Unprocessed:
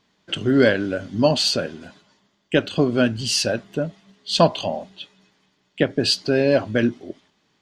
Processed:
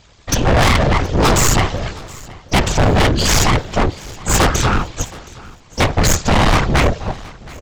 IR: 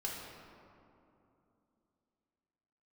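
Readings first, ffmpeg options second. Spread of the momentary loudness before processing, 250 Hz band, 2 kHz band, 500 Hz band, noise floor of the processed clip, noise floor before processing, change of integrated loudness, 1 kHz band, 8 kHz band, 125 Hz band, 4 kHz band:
15 LU, +2.0 dB, +7.5 dB, +0.5 dB, -45 dBFS, -67 dBFS, +5.0 dB, +12.0 dB, +12.5 dB, +11.5 dB, +3.0 dB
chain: -filter_complex "[0:a]tremolo=f=74:d=0.857,aresample=16000,aeval=exprs='abs(val(0))':c=same,aresample=44100,afftfilt=real='hypot(re,im)*cos(2*PI*random(0))':imag='hypot(re,im)*sin(2*PI*random(1))':win_size=512:overlap=0.75,apsyclip=20.5dB,asplit=2[a][b];[b]acontrast=32,volume=-2dB[c];[a][c]amix=inputs=2:normalize=0,asoftclip=type=tanh:threshold=-10dB,aecho=1:1:721|1442|2163:0.0841|0.032|0.0121"

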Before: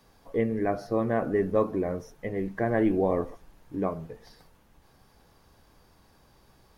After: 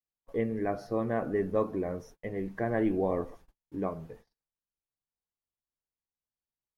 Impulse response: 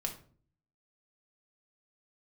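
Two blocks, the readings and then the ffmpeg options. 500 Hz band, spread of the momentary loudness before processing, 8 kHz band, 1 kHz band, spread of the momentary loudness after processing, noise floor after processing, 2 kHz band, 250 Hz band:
-4.0 dB, 15 LU, n/a, -4.0 dB, 12 LU, under -85 dBFS, -4.0 dB, -4.0 dB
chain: -af "agate=range=-40dB:threshold=-47dB:ratio=16:detection=peak,volume=-4dB"

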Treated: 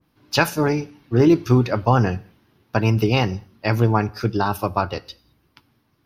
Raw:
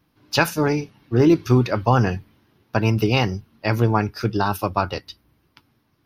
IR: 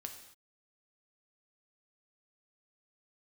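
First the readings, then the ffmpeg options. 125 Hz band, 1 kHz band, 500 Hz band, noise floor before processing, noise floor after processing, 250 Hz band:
+1.0 dB, +0.5 dB, +0.5 dB, -66 dBFS, -65 dBFS, +0.5 dB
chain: -filter_complex "[0:a]asplit=2[a][b];[1:a]atrim=start_sample=2205,afade=t=out:st=0.27:d=0.01,atrim=end_sample=12348[c];[b][c]afir=irnorm=-1:irlink=0,volume=-10dB[d];[a][d]amix=inputs=2:normalize=0,adynamicequalizer=threshold=0.0251:dfrequency=1500:dqfactor=0.7:tfrequency=1500:tqfactor=0.7:attack=5:release=100:ratio=0.375:range=1.5:mode=cutabove:tftype=highshelf,volume=-1dB"

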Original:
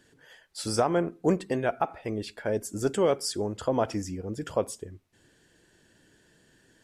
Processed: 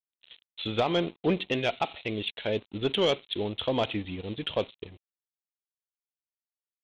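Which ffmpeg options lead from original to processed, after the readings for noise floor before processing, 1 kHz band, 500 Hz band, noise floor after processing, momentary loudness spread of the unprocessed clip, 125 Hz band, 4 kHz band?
-64 dBFS, -2.0 dB, -1.5 dB, under -85 dBFS, 10 LU, -1.5 dB, +8.0 dB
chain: -af "aresample=8000,aeval=exprs='sgn(val(0))*max(abs(val(0))-0.00316,0)':c=same,aresample=44100,aexciter=amount=8.9:drive=5.3:freq=2.4k,asoftclip=type=tanh:threshold=-15.5dB"

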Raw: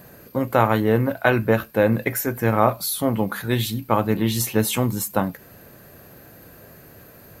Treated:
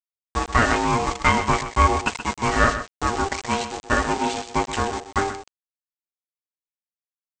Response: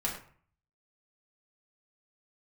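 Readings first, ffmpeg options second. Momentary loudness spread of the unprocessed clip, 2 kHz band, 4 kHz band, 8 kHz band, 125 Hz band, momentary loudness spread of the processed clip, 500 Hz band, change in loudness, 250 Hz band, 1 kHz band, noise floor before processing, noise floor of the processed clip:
5 LU, +3.5 dB, +1.0 dB, -2.5 dB, -4.5 dB, 7 LU, -5.5 dB, -1.0 dB, -5.0 dB, +4.0 dB, -47 dBFS, under -85 dBFS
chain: -filter_complex "[0:a]agate=range=-33dB:threshold=-34dB:ratio=3:detection=peak,lowpass=f=2.6k:w=0.5412,lowpass=f=2.6k:w=1.3066,lowshelf=f=89:g=-10,aecho=1:1:5.9:0.58,aeval=exprs='0.841*(cos(1*acos(clip(val(0)/0.841,-1,1)))-cos(1*PI/2))+0.0841*(cos(4*acos(clip(val(0)/0.841,-1,1)))-cos(4*PI/2))':c=same,aresample=16000,aeval=exprs='val(0)*gte(abs(val(0)),0.0398)':c=same,aresample=44100,aeval=exprs='val(0)*sin(2*PI*590*n/s)':c=same,crystalizer=i=2.5:c=0,asplit=2[a][b];[b]aecho=0:1:127:0.282[c];[a][c]amix=inputs=2:normalize=0,volume=1.5dB"

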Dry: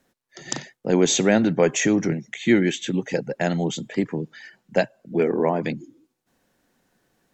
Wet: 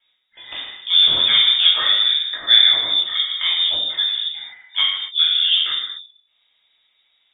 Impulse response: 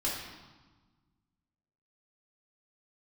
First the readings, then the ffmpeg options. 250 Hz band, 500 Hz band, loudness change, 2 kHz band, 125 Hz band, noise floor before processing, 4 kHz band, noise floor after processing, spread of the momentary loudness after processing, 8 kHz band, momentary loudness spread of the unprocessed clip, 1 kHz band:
under -25 dB, -20.5 dB, +8.0 dB, +3.0 dB, under -20 dB, -78 dBFS, +22.5 dB, -66 dBFS, 18 LU, under -40 dB, 13 LU, -3.5 dB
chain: -filter_complex "[1:a]atrim=start_sample=2205,afade=t=out:st=0.33:d=0.01,atrim=end_sample=14994[a];[0:a][a]afir=irnorm=-1:irlink=0,lowpass=f=3.2k:t=q:w=0.5098,lowpass=f=3.2k:t=q:w=0.6013,lowpass=f=3.2k:t=q:w=0.9,lowpass=f=3.2k:t=q:w=2.563,afreqshift=-3800,volume=-2.5dB"

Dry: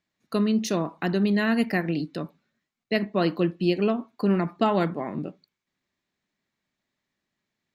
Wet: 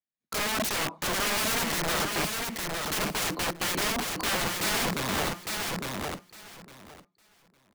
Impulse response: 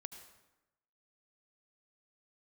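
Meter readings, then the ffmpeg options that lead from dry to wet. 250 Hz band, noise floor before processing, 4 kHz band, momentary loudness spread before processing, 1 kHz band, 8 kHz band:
-11.0 dB, -84 dBFS, +8.5 dB, 10 LU, +0.5 dB, n/a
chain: -filter_complex "[0:a]agate=range=-25dB:threshold=-53dB:ratio=16:detection=peak,adynamicequalizer=threshold=0.0158:dfrequency=230:dqfactor=4.8:tfrequency=230:tqfactor=4.8:attack=5:release=100:ratio=0.375:range=2.5:mode=cutabove:tftype=bell,acrossover=split=220|3000[a][b][c];[b]acompressor=threshold=-23dB:ratio=6[d];[a][d][c]amix=inputs=3:normalize=0,aeval=exprs='(mod(25.1*val(0)+1,2)-1)/25.1':c=same,asplit=2[e][f];[f]aecho=0:1:857|1714|2571:0.668|0.114|0.0193[g];[e][g]amix=inputs=2:normalize=0,volume=4dB"

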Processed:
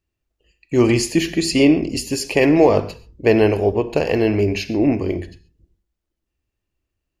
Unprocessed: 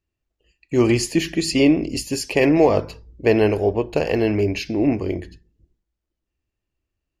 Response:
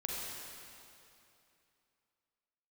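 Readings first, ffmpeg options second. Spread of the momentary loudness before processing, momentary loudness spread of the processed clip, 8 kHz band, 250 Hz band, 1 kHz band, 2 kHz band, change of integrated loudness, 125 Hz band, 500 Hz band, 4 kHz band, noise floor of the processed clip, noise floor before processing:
9 LU, 8 LU, +2.0 dB, +2.0 dB, +2.0 dB, +2.0 dB, +2.0 dB, +2.0 dB, +2.0 dB, +2.0 dB, -80 dBFS, -82 dBFS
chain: -filter_complex "[0:a]asplit=2[a][b];[1:a]atrim=start_sample=2205,afade=t=out:st=0.19:d=0.01,atrim=end_sample=8820[c];[b][c]afir=irnorm=-1:irlink=0,volume=-10dB[d];[a][d]amix=inputs=2:normalize=0"

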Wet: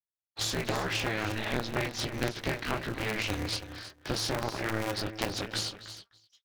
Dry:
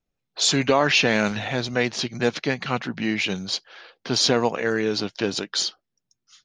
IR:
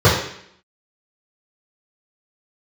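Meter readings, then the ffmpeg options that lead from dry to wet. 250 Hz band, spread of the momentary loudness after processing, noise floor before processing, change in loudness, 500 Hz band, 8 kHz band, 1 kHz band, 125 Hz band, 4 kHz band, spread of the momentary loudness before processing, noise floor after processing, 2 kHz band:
-10.5 dB, 7 LU, -81 dBFS, -9.5 dB, -11.0 dB, -9.5 dB, -8.0 dB, -4.5 dB, -10.0 dB, 10 LU, under -85 dBFS, -8.5 dB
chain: -filter_complex "[0:a]flanger=delay=16:depth=5.2:speed=1.3,acompressor=threshold=-28dB:ratio=6,equalizer=f=95:t=o:w=2.8:g=2.5,aeval=exprs='0.119*(cos(1*acos(clip(val(0)/0.119,-1,1)))-cos(1*PI/2))+0.0266*(cos(3*acos(clip(val(0)/0.119,-1,1)))-cos(3*PI/2))+0.0168*(cos(4*acos(clip(val(0)/0.119,-1,1)))-cos(4*PI/2))+0.0133*(cos(5*acos(clip(val(0)/0.119,-1,1)))-cos(5*PI/2))':c=same,equalizer=f=1.8k:t=o:w=0.77:g=2,asplit=2[a][b];[b]aecho=0:1:253:0.178[c];[a][c]amix=inputs=2:normalize=0,afftdn=nr=33:nf=-51,asplit=2[d][e];[e]aecho=0:1:322:0.224[f];[d][f]amix=inputs=2:normalize=0,aeval=exprs='val(0)*sgn(sin(2*PI*110*n/s))':c=same"

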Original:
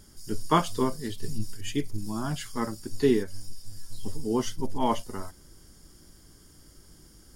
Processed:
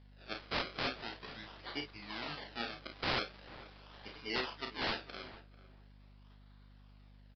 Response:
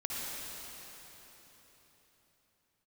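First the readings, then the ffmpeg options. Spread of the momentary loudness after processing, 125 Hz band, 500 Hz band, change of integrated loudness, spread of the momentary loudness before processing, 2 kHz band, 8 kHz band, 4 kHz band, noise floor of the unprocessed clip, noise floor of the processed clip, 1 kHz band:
16 LU, -16.0 dB, -14.5 dB, -10.0 dB, 17 LU, +2.5 dB, -24.0 dB, 0.0 dB, -55 dBFS, -59 dBFS, -11.5 dB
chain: -filter_complex "[0:a]acrusher=samples=33:mix=1:aa=0.000001:lfo=1:lforange=33:lforate=0.42,acontrast=48,aderivative,asplit=2[a][b];[b]aecho=0:1:34|50:0.501|0.299[c];[a][c]amix=inputs=2:normalize=0,aeval=exprs='(mod(3.16*val(0)+1,2)-1)/3.16':c=same,agate=range=-7dB:threshold=-58dB:ratio=16:detection=peak,aresample=11025,aresample=44100,highshelf=f=2.4k:g=-8,asplit=2[d][e];[e]adelay=444,lowpass=f=1.8k:p=1,volume=-16dB,asplit=2[f][g];[g]adelay=444,lowpass=f=1.8k:p=1,volume=0.18[h];[f][h]amix=inputs=2:normalize=0[i];[d][i]amix=inputs=2:normalize=0,aeval=exprs='val(0)+0.000708*(sin(2*PI*50*n/s)+sin(2*PI*2*50*n/s)/2+sin(2*PI*3*50*n/s)/3+sin(2*PI*4*50*n/s)/4+sin(2*PI*5*50*n/s)/5)':c=same,volume=5.5dB"

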